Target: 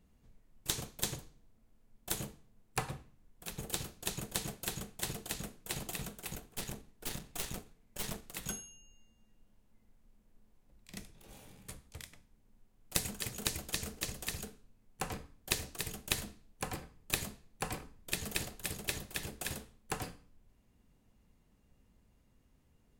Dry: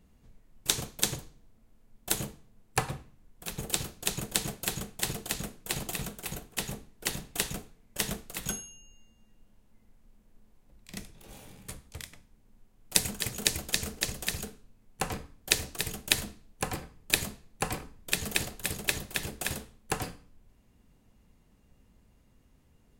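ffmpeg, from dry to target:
-filter_complex "[0:a]asettb=1/sr,asplit=3[a][b][c];[a]atrim=end=6.334[d];[b]atrim=start=6.33:end=8.35,asetpts=PTS-STARTPTS,afade=t=in:d=0.004:c=qsin,afade=t=out:st=2.016:d=0.004:c=qsin,aeval=exprs='0.335*(cos(1*acos(clip(val(0)/0.335,-1,1)))-cos(1*PI/2))+0.15*(cos(6*acos(clip(val(0)/0.335,-1,1)))-cos(6*PI/2))':c=same[e];[c]atrim=start=8.346[f];[d][e]acrossfade=d=0.004:c1=hsin:c2=qsin[g];[g][f]acrossfade=d=0.004:c1=qsin:c2=hsin,aeval=exprs='clip(val(0),-1,0.0596)':c=same,volume=-5.5dB"

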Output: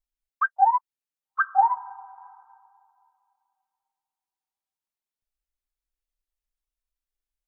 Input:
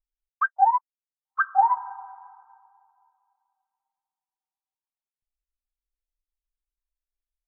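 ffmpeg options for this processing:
-filter_complex "[0:a]asettb=1/sr,asplit=3[a][b][c];[a]atrim=end=1.684[d];[b]atrim=start=1.68:end=2.18,asetpts=PTS-STARTPTS,afade=t=in:d=0.004:c=qsin,afade=t=out:st=0.496:d=0.004:c=qsin,equalizer=f=1.7k:t=o:w=2.4:g=-4.5[e];[c]atrim=start=2.176[f];[d][e]acrossfade=d=0.004:c1=hsin:c2=qsin[g];[g][f]acrossfade=d=0.004:c1=qsin:c2=hsin"

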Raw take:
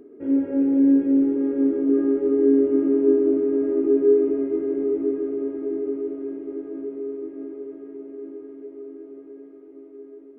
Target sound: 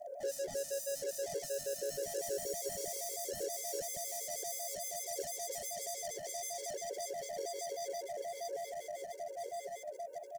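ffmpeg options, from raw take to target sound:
-filter_complex "[0:a]asplit=2[a][b];[b]aecho=0:1:764:0.501[c];[a][c]amix=inputs=2:normalize=0,afreqshift=280,asplit=2[d][e];[e]aecho=0:1:460|874|1247|1582|1884:0.631|0.398|0.251|0.158|0.1[f];[d][f]amix=inputs=2:normalize=0,agate=range=-13dB:threshold=-50dB:ratio=16:detection=peak,acontrast=77,asoftclip=type=hard:threshold=-31.5dB,firequalizer=gain_entry='entry(110,0);entry(170,5);entry(260,-8);entry(400,10);entry(750,-13);entry(1100,-27);entry(1600,-10);entry(2300,-14);entry(3700,-8);entry(5800,10)':delay=0.05:min_phase=1,acompressor=threshold=-36dB:ratio=3,afftfilt=real='re*gt(sin(2*PI*6.3*pts/sr)*(1-2*mod(floor(b*sr/1024/290),2)),0)':imag='im*gt(sin(2*PI*6.3*pts/sr)*(1-2*mod(floor(b*sr/1024/290),2)),0)':win_size=1024:overlap=0.75,volume=2dB"

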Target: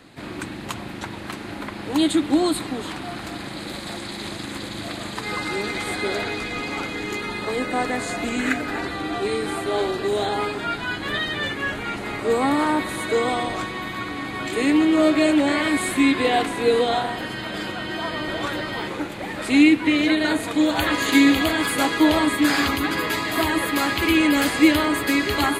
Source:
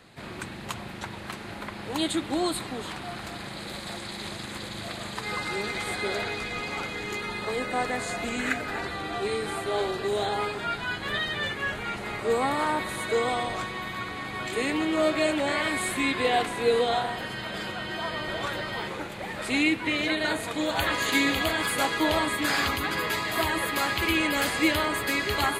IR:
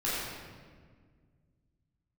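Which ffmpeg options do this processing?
-af "equalizer=f=290:w=3.9:g=10,volume=3.5dB"

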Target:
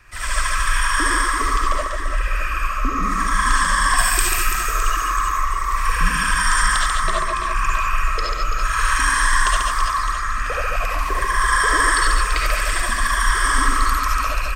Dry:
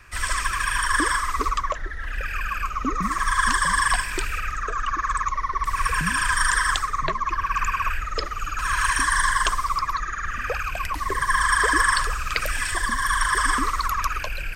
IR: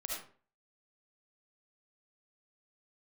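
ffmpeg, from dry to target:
-filter_complex "[0:a]asettb=1/sr,asplit=3[a][b][c];[a]atrim=end=3.974[d];[b]atrim=start=3.97:end=4.97,asetpts=PTS-STARTPTS,afade=t=in:d=0.004:c=qsin,afade=t=out:st=0.996:d=0.004:c=qsin,aemphasis=mode=production:type=75fm[e];[c]atrim=start=4.966[f];[d][e]acrossfade=d=0.004:c1=hsin:c2=qsin[g];[g][f]acrossfade=d=0.004:c1=qsin:c2=hsin,aecho=1:1:140|336|610.4|994.6|1532:0.631|0.398|0.251|0.158|0.1[h];[1:a]atrim=start_sample=2205,atrim=end_sample=4410[i];[h][i]afir=irnorm=-1:irlink=0,volume=2dB"

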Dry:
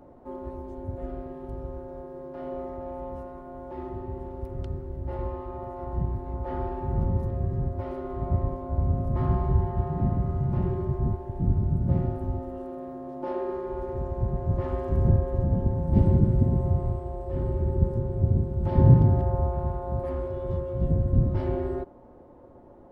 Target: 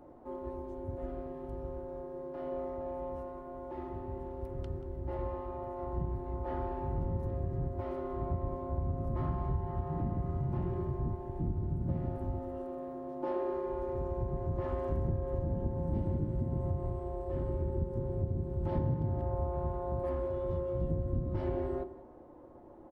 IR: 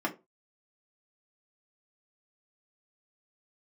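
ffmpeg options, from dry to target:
-filter_complex "[0:a]acompressor=threshold=-24dB:ratio=4,aecho=1:1:184:0.141,asplit=2[a][b];[1:a]atrim=start_sample=2205[c];[b][c]afir=irnorm=-1:irlink=0,volume=-15.5dB[d];[a][d]amix=inputs=2:normalize=0,volume=-5dB"

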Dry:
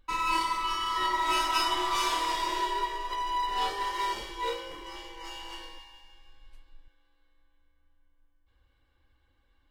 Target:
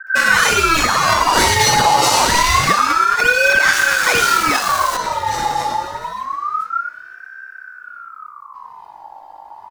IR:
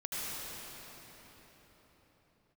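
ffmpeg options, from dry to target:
-filter_complex "[0:a]asettb=1/sr,asplit=3[a][b][c];[a]atrim=end=3.664[d];[b]atrim=start=3.66:end=4.9,asetpts=PTS-STARTPTS,afade=t=in:d=0.004:c=qsin,afade=t=out:st=1.236:d=0.004:c=qsin,aeval=exprs='val(0)+0.5*0.0158*sgn(val(0))':c=same[e];[c]atrim=start=4.896[f];[d][e]acrossfade=d=0.004:c1=hsin:c2=qsin[g];[g][f]acrossfade=d=0.004:c1=qsin:c2=hsin,acrossover=split=150|470[h][i][j];[j]adelay=70[k];[i]adelay=340[l];[h][l][k]amix=inputs=3:normalize=0,aeval=exprs='val(0)+0.000501*(sin(2*PI*50*n/s)+sin(2*PI*2*50*n/s)/2+sin(2*PI*3*50*n/s)/3+sin(2*PI*4*50*n/s)/4+sin(2*PI*5*50*n/s)/5)':c=same,equalizer=f=1.8k:t=o:w=1.2:g=-14.5,acrossover=split=230|1200|3300[m][n][o][p];[n]acompressor=threshold=-56dB:ratio=6[q];[o]acrusher=samples=29:mix=1:aa=0.000001:lfo=1:lforange=46.4:lforate=1.1[r];[m][q][r][p]amix=inputs=4:normalize=0,highshelf=f=5.7k:g=-7.5,alimiter=level_in=29.5dB:limit=-1dB:release=50:level=0:latency=1,aeval=exprs='val(0)*sin(2*PI*1200*n/s+1200*0.3/0.27*sin(2*PI*0.27*n/s))':c=same"

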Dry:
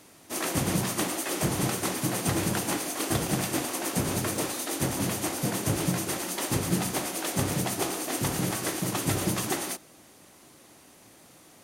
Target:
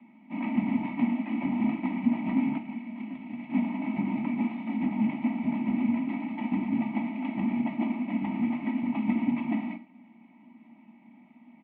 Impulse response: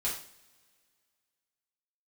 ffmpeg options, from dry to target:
-filter_complex "[0:a]aecho=1:1:3:0.7,asettb=1/sr,asplit=3[a][b][c];[a]atrim=end=2.574[d];[b]atrim=start=2.57:end=3.5,asetpts=PTS-STARTPTS,afade=t=in:d=0.004:c=qsin,afade=t=out:st=0.926:d=0.004:c=qsin,acrossover=split=430|1800[e][f][g];[e]acompressor=threshold=-41dB:ratio=4[h];[f]acompressor=threshold=-46dB:ratio=4[i];[g]acompressor=threshold=-37dB:ratio=4[j];[h][i][j]amix=inputs=3:normalize=0[k];[c]atrim=start=3.496[l];[d][k]acrossfade=d=0.004:c1=hsin:c2=qsin[m];[m][l]acrossfade=d=0.004:c1=qsin:c2=hsin,asplit=3[n][o][p];[n]bandpass=f=300:t=q:w=8,volume=0dB[q];[o]bandpass=f=870:t=q:w=8,volume=-6dB[r];[p]bandpass=f=2.24k:t=q:w=8,volume=-9dB[s];[q][r][s]amix=inputs=3:normalize=0,asplit=2[t][u];[1:a]atrim=start_sample=2205,afade=t=out:st=0.18:d=0.01,atrim=end_sample=8379[v];[u][v]afir=irnorm=-1:irlink=0,volume=-10dB[w];[t][w]amix=inputs=2:normalize=0,highpass=f=180:t=q:w=0.5412,highpass=f=180:t=q:w=1.307,lowpass=f=2.9k:t=q:w=0.5176,lowpass=f=2.9k:t=q:w=0.7071,lowpass=f=2.9k:t=q:w=1.932,afreqshift=-65,volume=6dB"

